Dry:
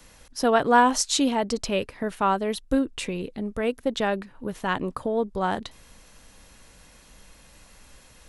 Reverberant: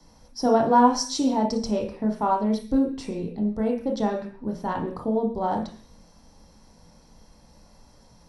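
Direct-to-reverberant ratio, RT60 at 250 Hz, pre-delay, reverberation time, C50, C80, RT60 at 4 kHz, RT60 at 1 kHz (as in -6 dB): 1.5 dB, 0.55 s, 22 ms, 0.45 s, 7.5 dB, 13.5 dB, no reading, 0.45 s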